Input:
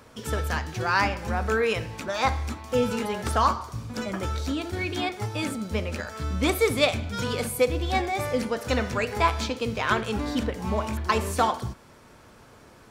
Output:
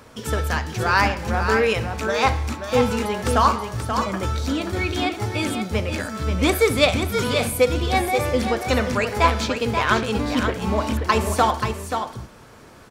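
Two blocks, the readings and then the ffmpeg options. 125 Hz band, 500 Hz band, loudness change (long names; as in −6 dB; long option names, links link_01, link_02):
+5.5 dB, +5.0 dB, +5.0 dB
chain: -af "aecho=1:1:532:0.447,volume=4.5dB"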